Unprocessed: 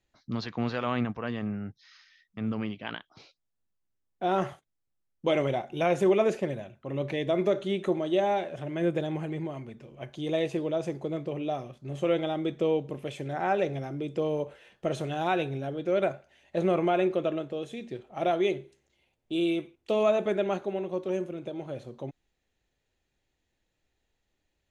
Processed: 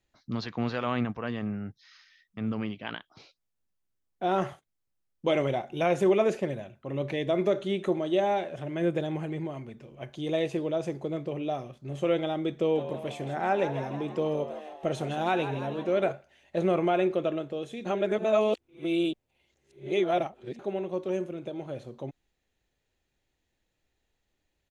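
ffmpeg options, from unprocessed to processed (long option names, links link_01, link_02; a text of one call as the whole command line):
ffmpeg -i in.wav -filter_complex "[0:a]asplit=3[link_01][link_02][link_03];[link_01]afade=type=out:start_time=12.74:duration=0.02[link_04];[link_02]asplit=7[link_05][link_06][link_07][link_08][link_09][link_10][link_11];[link_06]adelay=161,afreqshift=78,volume=-11dB[link_12];[link_07]adelay=322,afreqshift=156,volume=-15.9dB[link_13];[link_08]adelay=483,afreqshift=234,volume=-20.8dB[link_14];[link_09]adelay=644,afreqshift=312,volume=-25.6dB[link_15];[link_10]adelay=805,afreqshift=390,volume=-30.5dB[link_16];[link_11]adelay=966,afreqshift=468,volume=-35.4dB[link_17];[link_05][link_12][link_13][link_14][link_15][link_16][link_17]amix=inputs=7:normalize=0,afade=type=in:start_time=12.74:duration=0.02,afade=type=out:start_time=16.11:duration=0.02[link_18];[link_03]afade=type=in:start_time=16.11:duration=0.02[link_19];[link_04][link_18][link_19]amix=inputs=3:normalize=0,asplit=3[link_20][link_21][link_22];[link_20]atrim=end=17.852[link_23];[link_21]atrim=start=17.848:end=20.592,asetpts=PTS-STARTPTS,areverse[link_24];[link_22]atrim=start=20.588[link_25];[link_23][link_24]acrossfade=duration=0.004:curve1=hsin:curve2=hsin[link_26];[link_26][link_25]acrossfade=duration=0.004:curve1=hsin:curve2=hsin" out.wav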